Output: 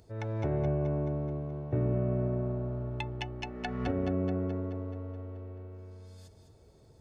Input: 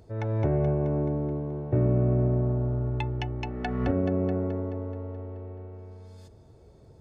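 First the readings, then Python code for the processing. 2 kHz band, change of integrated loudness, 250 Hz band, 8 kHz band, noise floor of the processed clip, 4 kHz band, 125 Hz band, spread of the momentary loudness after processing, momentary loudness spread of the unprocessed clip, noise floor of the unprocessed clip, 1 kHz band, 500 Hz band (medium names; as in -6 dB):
-2.0 dB, -5.5 dB, -5.0 dB, no reading, -59 dBFS, 0.0 dB, -6.0 dB, 15 LU, 16 LU, -53 dBFS, -4.0 dB, -5.0 dB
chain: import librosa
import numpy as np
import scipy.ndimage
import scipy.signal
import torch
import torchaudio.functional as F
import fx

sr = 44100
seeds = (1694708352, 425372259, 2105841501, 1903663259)

p1 = fx.high_shelf(x, sr, hz=2300.0, db=8.5)
p2 = p1 + fx.echo_single(p1, sr, ms=206, db=-9.5, dry=0)
y = p2 * librosa.db_to_amplitude(-6.0)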